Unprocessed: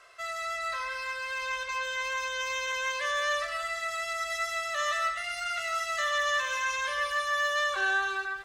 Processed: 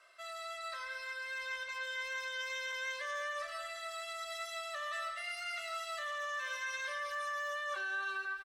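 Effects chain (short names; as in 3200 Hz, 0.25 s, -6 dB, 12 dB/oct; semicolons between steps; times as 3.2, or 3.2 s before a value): low shelf 270 Hz -8 dB; comb 3.3 ms, depth 53%; limiter -23 dBFS, peak gain reduction 7 dB; bell 65 Hz -6 dB 1.3 oct; notch 6800 Hz, Q 6.5; reverb RT60 2.1 s, pre-delay 9 ms, DRR 16 dB; gain -8 dB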